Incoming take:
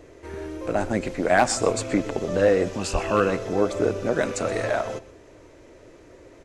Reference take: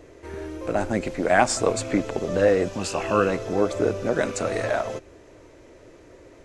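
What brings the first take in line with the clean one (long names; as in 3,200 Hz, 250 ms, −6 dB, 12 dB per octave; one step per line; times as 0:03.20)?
clipped peaks rebuilt −9 dBFS
high-pass at the plosives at 0:02.92
echo removal 125 ms −18 dB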